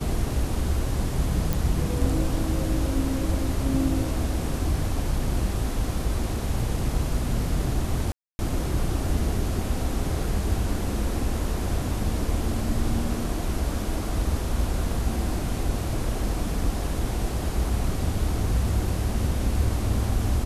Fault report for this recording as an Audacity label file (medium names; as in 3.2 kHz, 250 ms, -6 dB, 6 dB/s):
1.530000	1.530000	pop
8.120000	8.390000	dropout 270 ms